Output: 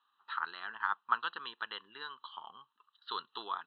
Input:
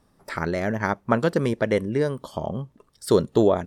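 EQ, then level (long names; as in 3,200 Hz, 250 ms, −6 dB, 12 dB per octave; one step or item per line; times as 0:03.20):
high-pass filter 1,500 Hz 12 dB per octave
Chebyshev low-pass with heavy ripple 4,100 Hz, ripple 9 dB
phaser with its sweep stopped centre 2,200 Hz, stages 6
+4.0 dB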